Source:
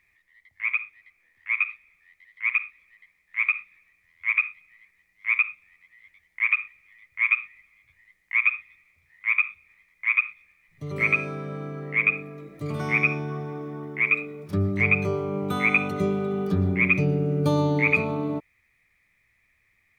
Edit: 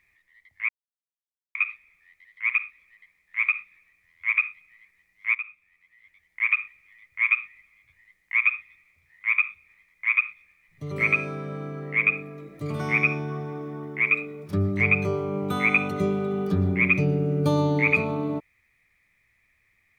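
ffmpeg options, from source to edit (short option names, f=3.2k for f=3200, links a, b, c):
-filter_complex "[0:a]asplit=4[a][b][c][d];[a]atrim=end=0.69,asetpts=PTS-STARTPTS,afade=t=out:st=0.686:d=0.004:c=hsin[e];[b]atrim=start=0.69:end=1.55,asetpts=PTS-STARTPTS,volume=0[f];[c]atrim=start=1.55:end=5.35,asetpts=PTS-STARTPTS,afade=t=in:d=0.004:c=hsin,afade=t=out:st=3.796:d=0.004:c=hsin:silence=0.237137[g];[d]atrim=start=5.35,asetpts=PTS-STARTPTS,afade=t=in:d=1.2:silence=0.237137[h];[e][f][g][h]concat=n=4:v=0:a=1"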